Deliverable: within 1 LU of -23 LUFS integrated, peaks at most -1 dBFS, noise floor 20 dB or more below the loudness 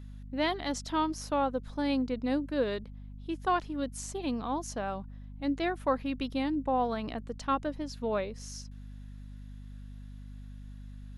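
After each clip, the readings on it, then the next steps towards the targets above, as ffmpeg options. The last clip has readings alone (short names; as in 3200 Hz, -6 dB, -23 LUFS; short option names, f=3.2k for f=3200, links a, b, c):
hum 50 Hz; harmonics up to 250 Hz; hum level -42 dBFS; loudness -32.5 LUFS; peak -16.5 dBFS; loudness target -23.0 LUFS
-> -af "bandreject=f=50:t=h:w=4,bandreject=f=100:t=h:w=4,bandreject=f=150:t=h:w=4,bandreject=f=200:t=h:w=4,bandreject=f=250:t=h:w=4"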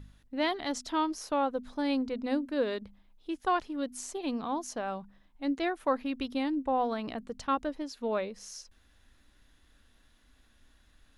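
hum none; loudness -33.0 LUFS; peak -17.0 dBFS; loudness target -23.0 LUFS
-> -af "volume=10dB"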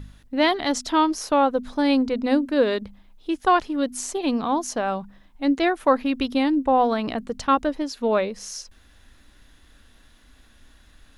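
loudness -23.0 LUFS; peak -7.0 dBFS; noise floor -54 dBFS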